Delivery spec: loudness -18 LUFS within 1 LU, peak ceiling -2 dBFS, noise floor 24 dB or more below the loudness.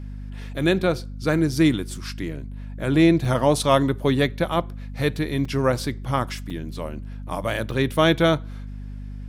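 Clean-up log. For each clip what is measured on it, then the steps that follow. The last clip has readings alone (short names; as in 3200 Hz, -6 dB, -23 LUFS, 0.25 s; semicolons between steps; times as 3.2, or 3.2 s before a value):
dropouts 4; longest dropout 3.8 ms; hum 50 Hz; harmonics up to 250 Hz; hum level -32 dBFS; loudness -22.5 LUFS; peak -4.0 dBFS; loudness target -18.0 LUFS
-> interpolate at 3.25/5.45/6.5/7.71, 3.8 ms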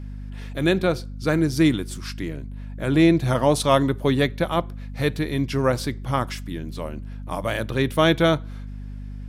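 dropouts 0; hum 50 Hz; harmonics up to 250 Hz; hum level -32 dBFS
-> notches 50/100/150/200/250 Hz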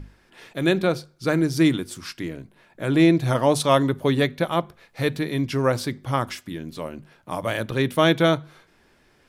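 hum none; loudness -22.5 LUFS; peak -4.0 dBFS; loudness target -18.0 LUFS
-> gain +4.5 dB; limiter -2 dBFS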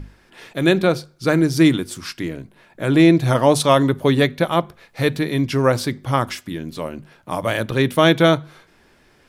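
loudness -18.0 LUFS; peak -2.0 dBFS; noise floor -55 dBFS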